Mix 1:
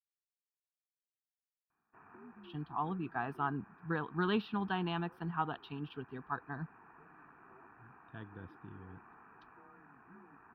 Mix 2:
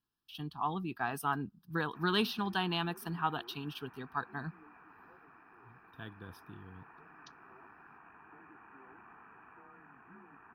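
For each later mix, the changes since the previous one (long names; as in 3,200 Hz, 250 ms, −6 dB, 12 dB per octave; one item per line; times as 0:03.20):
speech: entry −2.15 s
master: remove high-frequency loss of the air 460 metres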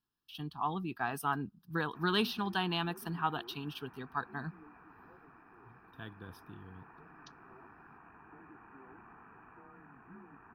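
background: add spectral tilt −2 dB per octave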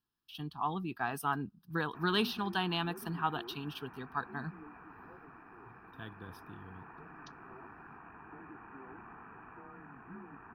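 background +4.5 dB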